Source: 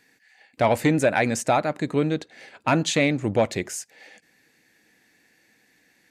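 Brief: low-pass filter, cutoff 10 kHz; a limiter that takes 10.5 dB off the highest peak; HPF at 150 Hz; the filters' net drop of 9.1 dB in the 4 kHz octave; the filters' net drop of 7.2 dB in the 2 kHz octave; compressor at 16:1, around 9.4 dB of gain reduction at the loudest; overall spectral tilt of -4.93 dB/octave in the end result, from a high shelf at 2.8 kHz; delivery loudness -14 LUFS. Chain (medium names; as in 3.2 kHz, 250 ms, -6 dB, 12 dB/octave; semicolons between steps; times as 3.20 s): high-pass 150 Hz; low-pass 10 kHz; peaking EQ 2 kHz -6 dB; treble shelf 2.8 kHz -4 dB; peaking EQ 4 kHz -6 dB; compression 16:1, threshold -25 dBFS; trim +21.5 dB; peak limiter -2.5 dBFS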